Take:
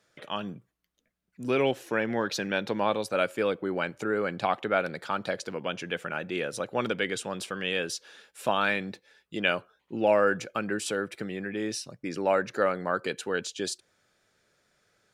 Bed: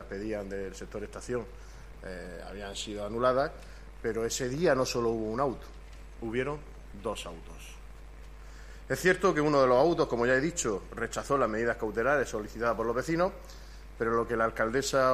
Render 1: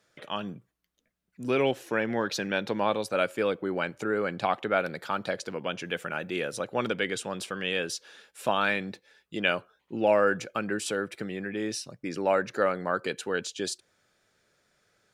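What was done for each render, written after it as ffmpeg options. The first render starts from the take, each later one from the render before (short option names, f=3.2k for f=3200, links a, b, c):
-filter_complex "[0:a]asettb=1/sr,asplit=3[a][b][c];[a]atrim=end=4.774[d];[b]atrim=start=4.77:end=5.24,asetpts=PTS-STARTPTS,afade=t=in:d=0.004:c=qsin,afade=t=out:st=0.466:d=0.004:c=qsin,equalizer=f=12k:w=7.7:g=12.5[e];[c]atrim=start=5.236[f];[d][e]acrossfade=d=0.004:c1=hsin:c2=qsin[g];[g][f]acrossfade=d=0.004:c1=qsin:c2=hsin,asettb=1/sr,asplit=3[h][i][j];[h]atrim=end=5.854[k];[i]atrim=start=5.85:end=6.53,asetpts=PTS-STARTPTS,afade=t=in:d=0.004:c=qsin,afade=t=out:st=0.676:d=0.004:c=qsin,highshelf=f=9.9k:g=9.5[l];[j]atrim=start=6.526[m];[k][l]acrossfade=d=0.004:c1=hsin:c2=qsin[n];[n][m]acrossfade=d=0.004:c1=qsin:c2=hsin"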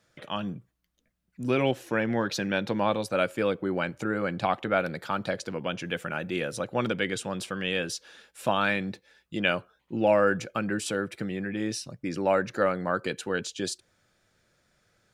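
-af "lowshelf=f=170:g=9.5,bandreject=f=420:w=12"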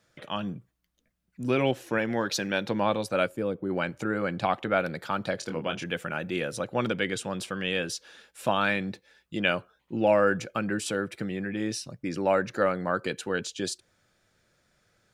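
-filter_complex "[0:a]asettb=1/sr,asplit=3[a][b][c];[a]atrim=end=1.984[d];[b]atrim=start=1.98:end=2.67,asetpts=PTS-STARTPTS,afade=t=in:d=0.004:c=qsin,afade=t=out:st=0.686:d=0.004:c=qsin,bass=f=250:g=-4,treble=f=4k:g=5[e];[c]atrim=start=2.666[f];[d][e]acrossfade=d=0.004:c1=hsin:c2=qsin[g];[g][f]acrossfade=d=0.004:c1=qsin:c2=hsin,asplit=3[h][i][j];[h]afade=t=out:st=3.27:d=0.02[k];[i]equalizer=f=2.6k:w=0.36:g=-13.5,afade=t=in:st=3.27:d=0.02,afade=t=out:st=3.69:d=0.02[l];[j]afade=t=in:st=3.69:d=0.02[m];[k][l][m]amix=inputs=3:normalize=0,asettb=1/sr,asplit=3[n][o][p];[n]atrim=end=5.384[q];[o]atrim=start=5.38:end=5.84,asetpts=PTS-STARTPTS,afade=t=in:d=0.004:c=qsin,afade=t=out:st=0.456:d=0.004:c=qsin,asplit=2[r][s];[s]adelay=25,volume=-6dB[t];[r][t]amix=inputs=2:normalize=0,atrim=end_sample=20286[u];[p]atrim=start=5.836[v];[q][u]acrossfade=d=0.004:c1=hsin:c2=qsin[w];[w][v]acrossfade=d=0.004:c1=qsin:c2=hsin"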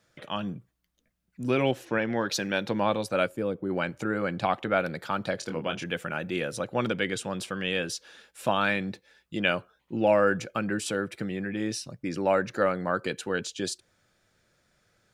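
-filter_complex "[0:a]asplit=3[a][b][c];[a]afade=t=out:st=1.84:d=0.02[d];[b]lowpass=5.1k,afade=t=in:st=1.84:d=0.02,afade=t=out:st=2.27:d=0.02[e];[c]afade=t=in:st=2.27:d=0.02[f];[d][e][f]amix=inputs=3:normalize=0"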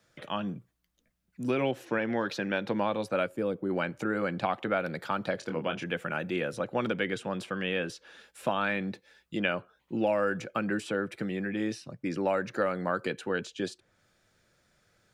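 -filter_complex "[0:a]acrossover=split=120|3000[a][b][c];[a]acompressor=threshold=-57dB:ratio=4[d];[b]acompressor=threshold=-24dB:ratio=4[e];[c]acompressor=threshold=-50dB:ratio=4[f];[d][e][f]amix=inputs=3:normalize=0"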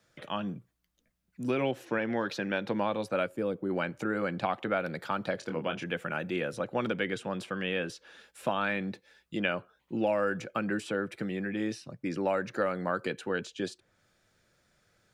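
-af "volume=-1dB"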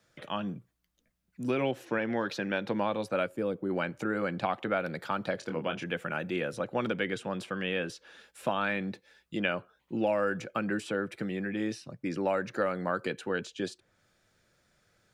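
-af anull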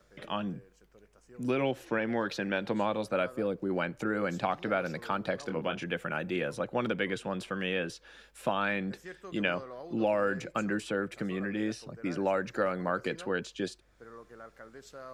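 -filter_complex "[1:a]volume=-21dB[a];[0:a][a]amix=inputs=2:normalize=0"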